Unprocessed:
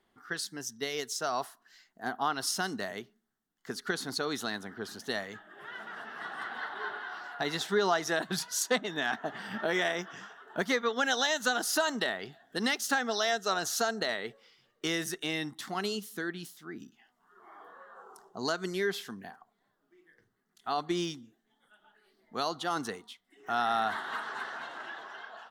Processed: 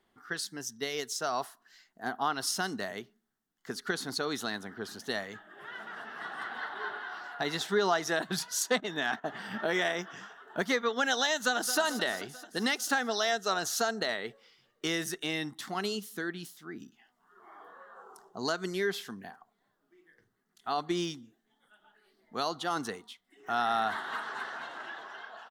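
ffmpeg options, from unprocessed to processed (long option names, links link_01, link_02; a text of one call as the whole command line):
ffmpeg -i in.wav -filter_complex "[0:a]asettb=1/sr,asplit=3[link_01][link_02][link_03];[link_01]atrim=end=8.804[link_04];[link_02]atrim=start=8.8:end=9.28,asetpts=PTS-STARTPTS,afade=type=in:duration=0.004:curve=qsin,afade=type=out:start_time=0.476:duration=0.004:curve=qsin,agate=range=-12dB:threshold=-45dB:ratio=16:release=100:detection=peak[link_05];[link_03]atrim=start=9.276[link_06];[link_04][link_05]acrossfade=duration=0.004:curve1=hsin:curve2=qsin[link_07];[link_07][link_06]acrossfade=duration=0.004:curve1=qsin:curve2=hsin,asplit=2[link_08][link_09];[link_09]afade=type=in:start_time=11.34:duration=0.01,afade=type=out:start_time=11.78:duration=0.01,aecho=0:1:220|440|660|880|1100|1320|1540|1760:0.266073|0.172947|0.112416|0.0730702|0.0474956|0.0308721|0.0200669|0.0130435[link_10];[link_08][link_10]amix=inputs=2:normalize=0" out.wav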